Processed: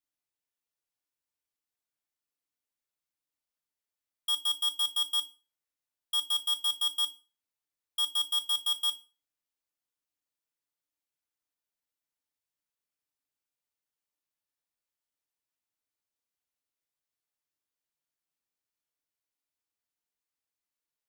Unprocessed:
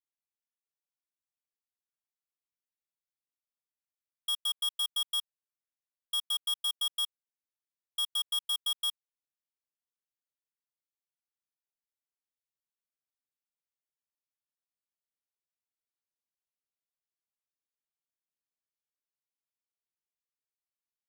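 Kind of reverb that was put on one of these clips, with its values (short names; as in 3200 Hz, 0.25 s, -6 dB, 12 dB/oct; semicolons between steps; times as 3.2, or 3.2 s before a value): FDN reverb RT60 0.34 s, low-frequency decay 0.95×, high-frequency decay 0.9×, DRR 5.5 dB; gain +1.5 dB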